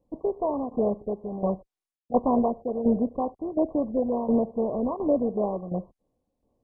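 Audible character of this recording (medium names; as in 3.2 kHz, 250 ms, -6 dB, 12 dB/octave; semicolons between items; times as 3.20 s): tremolo saw down 1.4 Hz, depth 70%; MP2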